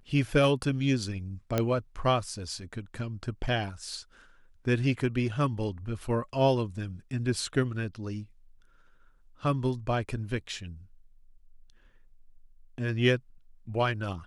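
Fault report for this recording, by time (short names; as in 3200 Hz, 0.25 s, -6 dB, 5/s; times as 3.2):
1.58 pop -12 dBFS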